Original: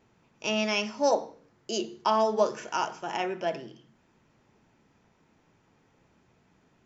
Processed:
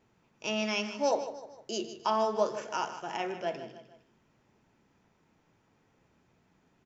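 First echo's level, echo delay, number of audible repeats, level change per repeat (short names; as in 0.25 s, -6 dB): -12.0 dB, 0.153 s, 3, -7.0 dB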